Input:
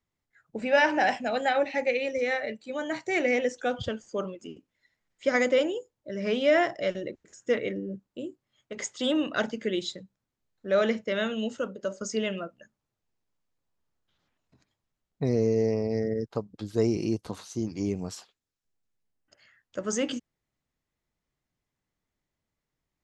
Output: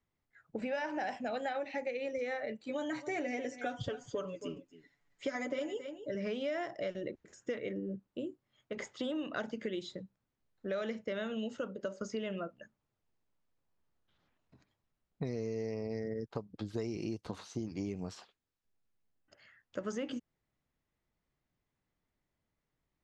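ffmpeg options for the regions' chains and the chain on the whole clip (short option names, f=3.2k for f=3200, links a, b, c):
-filter_complex "[0:a]asettb=1/sr,asplit=3[a][b][c];[a]atrim=end=2.664[d];[b]atrim=start=2.66:end=6.15,asetpts=PTS-STARTPTS,afade=t=in:d=0.004:c=qsin,afade=t=out:st=3.486:d=0.004:c=qsin,equalizer=f=6.8k:w=1.7:g=4,aecho=1:1:7:0.81,atrim=end_sample=153909,aecho=1:1:271:0.106,atrim=end_sample=153909[e];[c]atrim=start=6.146[f];[d][e]acrossfade=d=0.004:c1=hsin:c2=qsin[g];[g][f]acrossfade=d=0.004:c1=qsin:c2=hsin,acrossover=split=1700|5000[h][i][j];[h]acompressor=threshold=-32dB:ratio=4[k];[i]acompressor=threshold=-45dB:ratio=4[l];[j]acompressor=threshold=-48dB:ratio=4[m];[k][l][m]amix=inputs=3:normalize=0,aemphasis=mode=reproduction:type=50fm,acompressor=threshold=-39dB:ratio=1.5"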